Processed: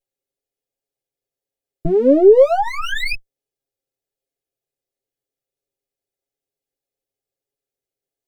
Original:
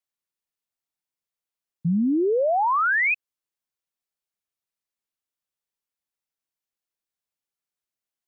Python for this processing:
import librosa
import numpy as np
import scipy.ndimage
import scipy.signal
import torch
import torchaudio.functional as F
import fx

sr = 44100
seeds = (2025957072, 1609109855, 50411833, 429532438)

y = fx.lower_of_two(x, sr, delay_ms=2.4)
y = fx.low_shelf_res(y, sr, hz=780.0, db=9.0, q=3.0)
y = y + 0.74 * np.pad(y, (int(7.4 * sr / 1000.0), 0))[:len(y)]
y = y * 10.0 ** (-1.0 / 20.0)